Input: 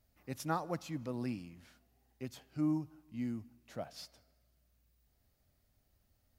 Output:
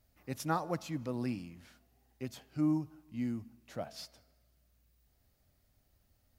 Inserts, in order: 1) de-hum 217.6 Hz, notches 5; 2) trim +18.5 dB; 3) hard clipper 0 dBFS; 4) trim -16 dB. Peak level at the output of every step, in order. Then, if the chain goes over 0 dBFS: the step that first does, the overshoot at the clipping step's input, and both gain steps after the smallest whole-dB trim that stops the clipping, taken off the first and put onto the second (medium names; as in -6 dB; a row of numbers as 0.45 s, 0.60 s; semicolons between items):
-20.0 dBFS, -1.5 dBFS, -1.5 dBFS, -17.5 dBFS; nothing clips